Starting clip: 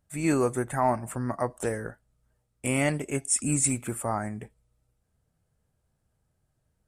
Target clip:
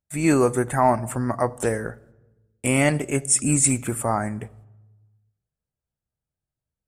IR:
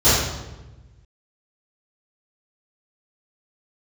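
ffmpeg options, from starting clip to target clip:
-filter_complex "[0:a]agate=range=-21dB:threshold=-60dB:ratio=16:detection=peak,asplit=2[a][b];[1:a]atrim=start_sample=2205,adelay=36[c];[b][c]afir=irnorm=-1:irlink=0,volume=-46dB[d];[a][d]amix=inputs=2:normalize=0,volume=6dB"

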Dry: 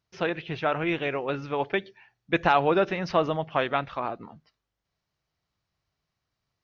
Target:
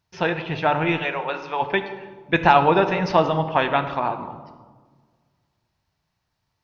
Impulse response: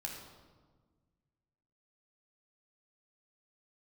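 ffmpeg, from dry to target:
-filter_complex "[0:a]asplit=3[a][b][c];[a]afade=t=out:st=0.98:d=0.02[d];[b]highpass=580,afade=t=in:st=0.98:d=0.02,afade=t=out:st=1.61:d=0.02[e];[c]afade=t=in:st=1.61:d=0.02[f];[d][e][f]amix=inputs=3:normalize=0,asplit=2[g][h];[h]equalizer=f=910:t=o:w=0.2:g=11.5[i];[1:a]atrim=start_sample=2205[j];[i][j]afir=irnorm=-1:irlink=0,volume=-2.5dB[k];[g][k]amix=inputs=2:normalize=0,volume=2dB"

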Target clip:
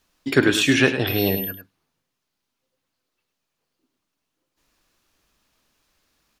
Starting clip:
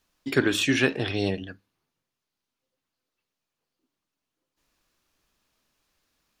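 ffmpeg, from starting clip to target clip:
-filter_complex "[0:a]asettb=1/sr,asplit=3[a][b][c];[a]atrim=end=1.074[d];[b]atrim=start=1.07:end=1.51,asetpts=PTS-STARTPTS,afade=t=in:d=0.004:c=qsin,afade=t=out:st=0.436:d=0.004:c=qsin,aeval=exprs='val(0)+0.02*sin(2*PI*13000*n/s)':c=same[e];[c]atrim=start=1.506[f];[d][e]acrossfade=d=0.004:c1=hsin:c2=qsin[g];[g][f]acrossfade=d=0.004:c1=qsin:c2=hsin,aecho=1:1:103:0.299,volume=5dB"

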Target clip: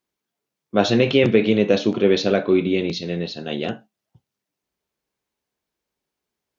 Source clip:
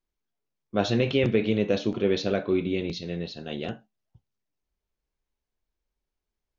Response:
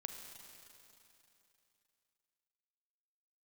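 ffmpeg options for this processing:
-af "highpass=140,volume=7.5dB"

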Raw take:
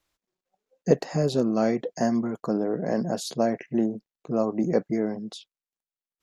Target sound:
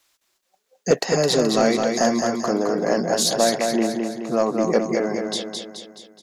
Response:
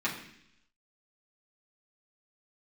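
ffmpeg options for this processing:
-filter_complex "[0:a]highshelf=f=4.3k:g=9.5,asplit=2[a][b];[b]highpass=f=720:p=1,volume=15dB,asoftclip=type=tanh:threshold=-4.5dB[c];[a][c]amix=inputs=2:normalize=0,lowpass=f=8k:p=1,volume=-6dB,aecho=1:1:213|426|639|852|1065|1278|1491:0.596|0.304|0.155|0.079|0.0403|0.0206|0.0105"

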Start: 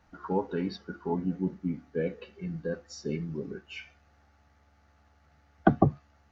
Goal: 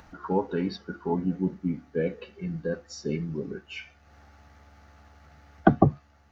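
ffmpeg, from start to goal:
-af "acompressor=mode=upward:threshold=-48dB:ratio=2.5,volume=3dB"

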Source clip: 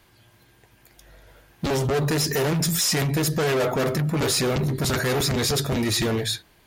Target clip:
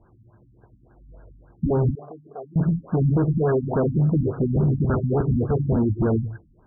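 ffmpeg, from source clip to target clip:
-filter_complex "[0:a]asettb=1/sr,asplit=3[a][b][c];[a]atrim=end=1.954[d];[b]atrim=start=1.95:end=2.56,asetpts=PTS-STARTPTS,afade=t=in:d=0.004:c=qsin,afade=t=out:st=0.606:d=0.004:c=qsin,asplit=3[e][f][g];[e]bandpass=f=730:t=q:w=8,volume=0dB[h];[f]bandpass=f=1.09k:t=q:w=8,volume=-6dB[i];[g]bandpass=f=2.44k:t=q:w=8,volume=-9dB[j];[h][i][j]amix=inputs=3:normalize=0[k];[c]atrim=start=2.556[l];[d][k]acrossfade=d=0.004:c1=hsin:c2=qsin[m];[m][l]acrossfade=d=0.004:c1=qsin:c2=hsin,lowshelf=f=390:g=5.5,afftfilt=real='re*lt(b*sr/1024,270*pow(1700/270,0.5+0.5*sin(2*PI*3.5*pts/sr)))':imag='im*lt(b*sr/1024,270*pow(1700/270,0.5+0.5*sin(2*PI*3.5*pts/sr)))':win_size=1024:overlap=0.75"

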